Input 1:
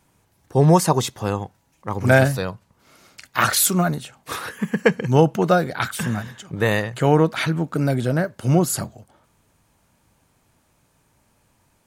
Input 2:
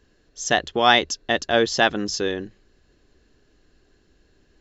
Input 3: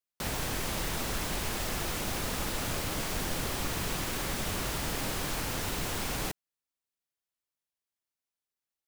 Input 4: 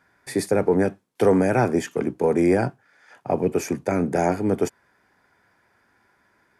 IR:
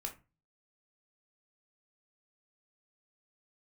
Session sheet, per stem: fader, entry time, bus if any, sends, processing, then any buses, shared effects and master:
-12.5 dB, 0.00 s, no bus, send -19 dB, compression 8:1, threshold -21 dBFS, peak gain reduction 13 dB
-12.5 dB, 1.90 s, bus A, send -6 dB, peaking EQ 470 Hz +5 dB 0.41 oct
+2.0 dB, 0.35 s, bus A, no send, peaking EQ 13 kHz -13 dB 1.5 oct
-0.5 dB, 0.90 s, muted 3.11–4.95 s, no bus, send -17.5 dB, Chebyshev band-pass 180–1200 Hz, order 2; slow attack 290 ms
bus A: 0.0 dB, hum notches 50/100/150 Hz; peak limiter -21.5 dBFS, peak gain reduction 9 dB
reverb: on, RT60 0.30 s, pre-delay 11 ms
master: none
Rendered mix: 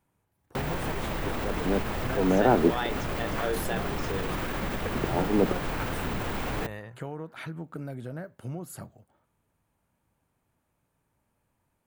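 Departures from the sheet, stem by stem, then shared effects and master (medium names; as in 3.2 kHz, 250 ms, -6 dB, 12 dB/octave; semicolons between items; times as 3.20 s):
stem 3 +2.0 dB -> +8.0 dB; master: extra peaking EQ 5.5 kHz -9 dB 1.6 oct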